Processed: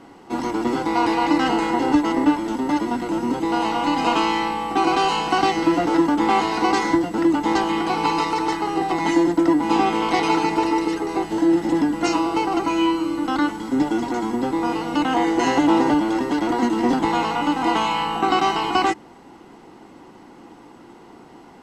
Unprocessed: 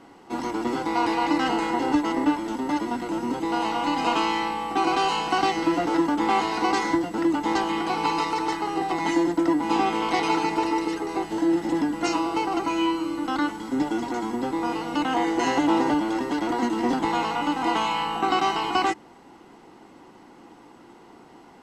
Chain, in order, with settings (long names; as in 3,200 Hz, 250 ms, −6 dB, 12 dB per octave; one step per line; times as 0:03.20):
low-shelf EQ 380 Hz +3 dB
level +3 dB